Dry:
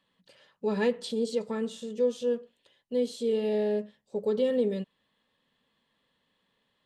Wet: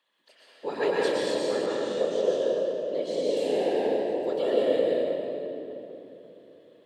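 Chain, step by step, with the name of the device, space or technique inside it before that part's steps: whispering ghost (whisper effect; high-pass 480 Hz 12 dB/octave; reverberation RT60 3.3 s, pre-delay 105 ms, DRR -5.5 dB); 1.66–3.37 s: low-pass 6.5 kHz 12 dB/octave

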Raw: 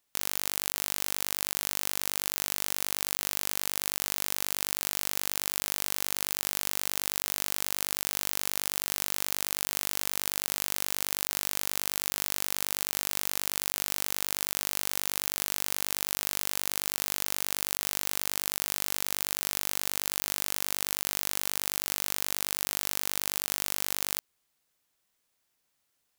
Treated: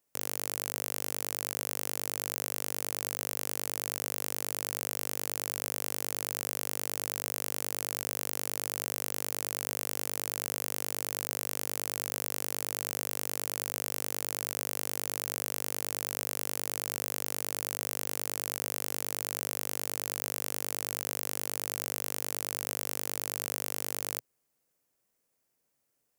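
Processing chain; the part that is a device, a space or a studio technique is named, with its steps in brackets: exciter from parts (in parallel at -4.5 dB: high-pass 3.4 kHz 24 dB/octave + saturation -14 dBFS, distortion -10 dB); on the sum: ten-band graphic EQ 125 Hz +7 dB, 250 Hz +5 dB, 500 Hz +9 dB; trim -5.5 dB

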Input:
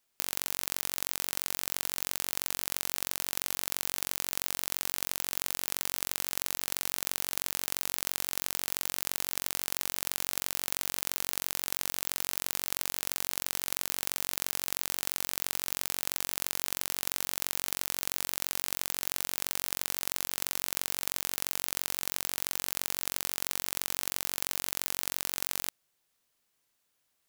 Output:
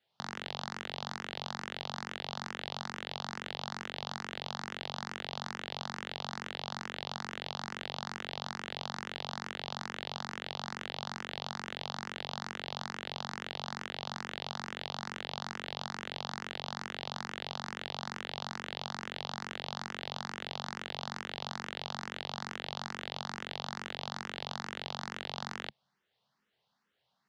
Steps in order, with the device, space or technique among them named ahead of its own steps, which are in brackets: barber-pole phaser into a guitar amplifier (barber-pole phaser +2.3 Hz; saturation -13.5 dBFS, distortion -13 dB; cabinet simulation 99–4100 Hz, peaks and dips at 140 Hz +6 dB, 210 Hz +8 dB, 300 Hz -8 dB, 830 Hz +4 dB, 2.4 kHz -7 dB); trim +6 dB

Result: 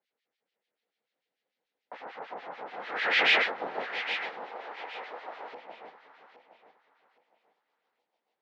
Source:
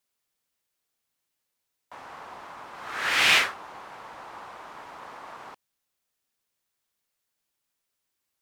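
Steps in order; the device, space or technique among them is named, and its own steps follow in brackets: guitar amplifier with harmonic tremolo (harmonic tremolo 6.8 Hz, depth 100%, crossover 1.6 kHz; saturation -21 dBFS, distortion -11 dB; cabinet simulation 92–4100 Hz, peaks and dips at 480 Hz +9 dB, 760 Hz +4 dB, 1.1 kHz -6 dB, 2 kHz +4 dB); echo whose repeats swap between lows and highs 408 ms, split 1 kHz, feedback 50%, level -4 dB; 4.45–5.52 s: tone controls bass -14 dB, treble 0 dB; high-pass 180 Hz 24 dB/octave; trim +4 dB

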